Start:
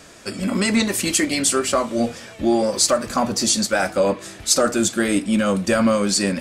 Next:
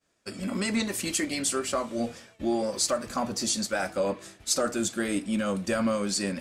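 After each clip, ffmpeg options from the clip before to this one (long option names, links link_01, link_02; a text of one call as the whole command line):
ffmpeg -i in.wav -af "agate=range=-33dB:threshold=-32dB:ratio=3:detection=peak,volume=-9dB" out.wav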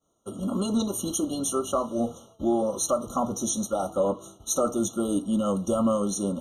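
ffmpeg -i in.wav -af "equalizer=frequency=3400:width=3.2:gain=-8.5,afftfilt=real='re*eq(mod(floor(b*sr/1024/1400),2),0)':imag='im*eq(mod(floor(b*sr/1024/1400),2),0)':win_size=1024:overlap=0.75,volume=3dB" out.wav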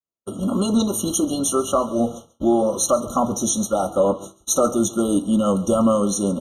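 ffmpeg -i in.wav -af "agate=range=-33dB:threshold=-37dB:ratio=3:detection=peak,aecho=1:1:137:0.112,volume=6.5dB" out.wav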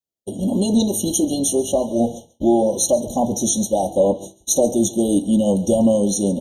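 ffmpeg -i in.wav -af "asuperstop=centerf=1600:order=12:qfactor=0.79,volume=2dB" out.wav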